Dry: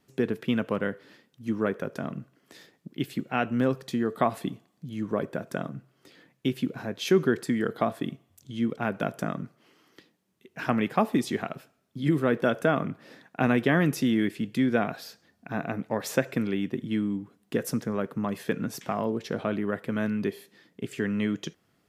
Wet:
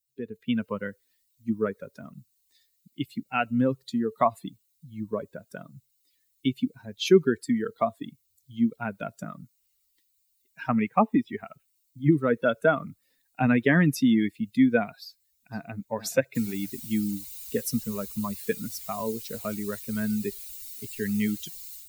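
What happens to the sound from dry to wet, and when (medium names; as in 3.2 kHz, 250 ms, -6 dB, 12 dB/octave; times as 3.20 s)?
10.68–12.12 s: Savitzky-Golay filter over 25 samples
15.05–15.76 s: echo throw 470 ms, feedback 50%, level -6.5 dB
16.35 s: noise floor step -55 dB -40 dB
whole clip: expander on every frequency bin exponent 2; level rider gain up to 10 dB; trim -3.5 dB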